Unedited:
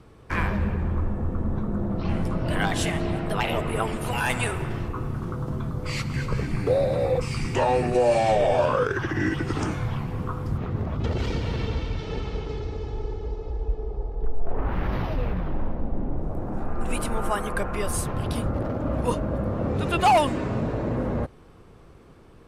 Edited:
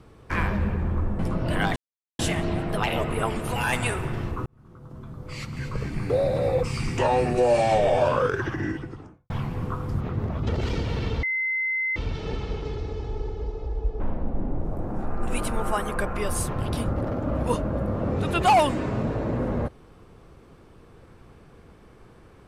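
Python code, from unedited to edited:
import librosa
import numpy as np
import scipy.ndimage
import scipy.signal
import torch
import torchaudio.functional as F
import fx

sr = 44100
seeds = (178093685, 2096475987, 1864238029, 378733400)

y = fx.studio_fade_out(x, sr, start_s=8.83, length_s=1.04)
y = fx.edit(y, sr, fx.cut(start_s=1.19, length_s=1.0),
    fx.insert_silence(at_s=2.76, length_s=0.43),
    fx.fade_in_span(start_s=5.03, length_s=1.98),
    fx.insert_tone(at_s=11.8, length_s=0.73, hz=2060.0, db=-23.0),
    fx.cut(start_s=13.84, length_s=1.74), tone=tone)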